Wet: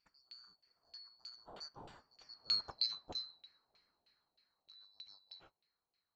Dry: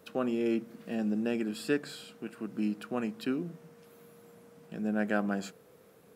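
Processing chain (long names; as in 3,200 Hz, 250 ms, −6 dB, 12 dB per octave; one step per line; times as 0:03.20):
neighbouring bands swapped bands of 4,000 Hz
source passing by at 0:02.67, 17 m/s, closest 3.2 metres
auto-filter low-pass saw down 3.2 Hz 640–2,700 Hz
level +7.5 dB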